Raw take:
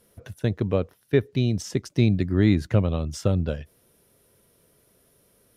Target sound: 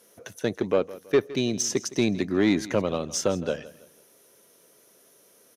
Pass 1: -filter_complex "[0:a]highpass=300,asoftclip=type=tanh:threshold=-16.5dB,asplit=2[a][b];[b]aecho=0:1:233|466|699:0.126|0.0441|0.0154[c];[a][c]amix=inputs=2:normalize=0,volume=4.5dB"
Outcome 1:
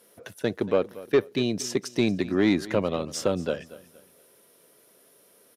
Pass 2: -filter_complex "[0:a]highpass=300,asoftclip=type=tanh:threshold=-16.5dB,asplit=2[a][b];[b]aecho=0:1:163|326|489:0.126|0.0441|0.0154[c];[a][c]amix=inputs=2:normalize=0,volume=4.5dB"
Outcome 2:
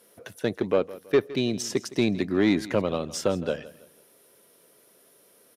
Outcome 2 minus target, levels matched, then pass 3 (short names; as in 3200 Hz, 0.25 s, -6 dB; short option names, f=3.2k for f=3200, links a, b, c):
8000 Hz band -6.5 dB
-filter_complex "[0:a]highpass=300,equalizer=f=6.2k:w=5.6:g=11,asoftclip=type=tanh:threshold=-16.5dB,asplit=2[a][b];[b]aecho=0:1:163|326|489:0.126|0.0441|0.0154[c];[a][c]amix=inputs=2:normalize=0,volume=4.5dB"